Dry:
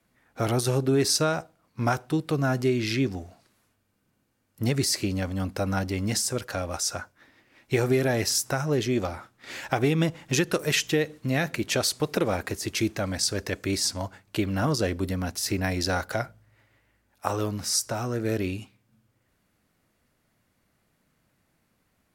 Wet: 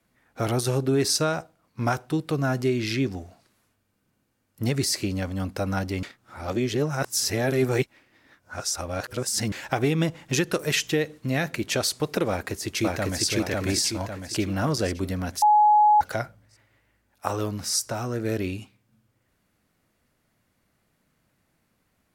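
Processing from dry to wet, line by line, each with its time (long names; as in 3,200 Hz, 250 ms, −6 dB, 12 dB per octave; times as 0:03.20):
0:06.03–0:09.52: reverse
0:12.29–0:13.26: delay throw 550 ms, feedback 45%, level −0.5 dB
0:15.42–0:16.01: beep over 842 Hz −13.5 dBFS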